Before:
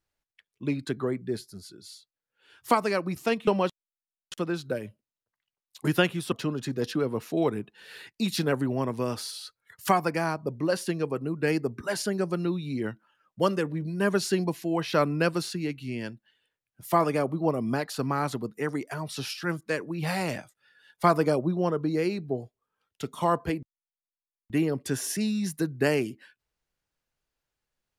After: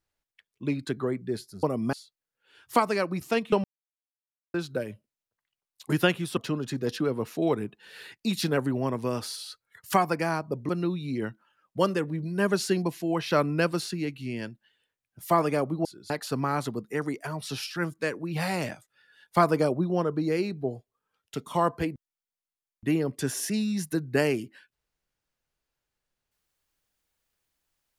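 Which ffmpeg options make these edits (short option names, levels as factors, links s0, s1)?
-filter_complex "[0:a]asplit=8[s0][s1][s2][s3][s4][s5][s6][s7];[s0]atrim=end=1.632[s8];[s1]atrim=start=17.468:end=17.772[s9];[s2]atrim=start=1.878:end=3.59,asetpts=PTS-STARTPTS,afade=t=out:st=1.708:d=0.004:c=hsin[s10];[s3]atrim=start=3.59:end=4.49,asetpts=PTS-STARTPTS,volume=0[s11];[s4]atrim=start=4.49:end=10.642,asetpts=PTS-STARTPTS,afade=t=in:d=0.004:c=hsin[s12];[s5]atrim=start=12.308:end=17.472[s13];[s6]atrim=start=1.628:end=1.882[s14];[s7]atrim=start=17.768[s15];[s8][s9]acrossfade=d=0.004:c1=hsin:c2=hsin[s16];[s10][s11][s12]concat=n=3:v=0:a=1[s17];[s16][s17]acrossfade=d=0.004:c1=hsin:c2=hsin[s18];[s18][s13]acrossfade=d=0.004:c1=hsin:c2=hsin[s19];[s19][s14]acrossfade=d=0.004:c1=hsin:c2=hsin[s20];[s20][s15]acrossfade=d=0.004:c1=hsin:c2=hsin"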